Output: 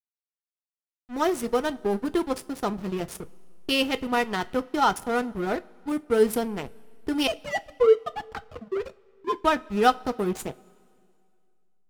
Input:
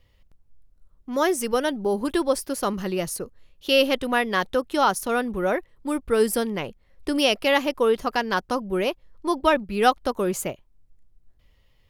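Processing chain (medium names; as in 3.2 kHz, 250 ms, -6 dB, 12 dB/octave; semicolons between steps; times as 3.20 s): 7.27–9.42 s: formants replaced by sine waves; comb of notches 560 Hz; hysteresis with a dead band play -24 dBFS; reverberation, pre-delay 3 ms, DRR 12 dB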